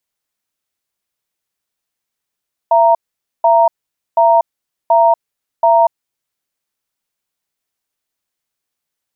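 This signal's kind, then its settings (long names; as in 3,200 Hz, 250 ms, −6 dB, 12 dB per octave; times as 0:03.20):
tone pair in a cadence 672 Hz, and 931 Hz, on 0.24 s, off 0.49 s, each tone −9.5 dBFS 3.36 s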